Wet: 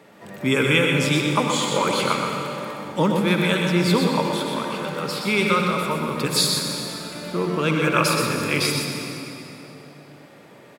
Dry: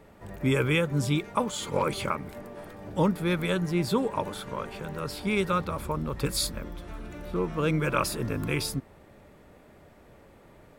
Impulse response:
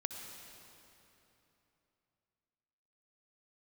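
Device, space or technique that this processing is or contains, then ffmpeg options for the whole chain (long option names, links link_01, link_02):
PA in a hall: -filter_complex "[0:a]highpass=frequency=140:width=0.5412,highpass=frequency=140:width=1.3066,equalizer=frequency=3800:width_type=o:width=2.6:gain=6,aecho=1:1:124:0.531[link_01];[1:a]atrim=start_sample=2205[link_02];[link_01][link_02]afir=irnorm=-1:irlink=0,volume=5dB"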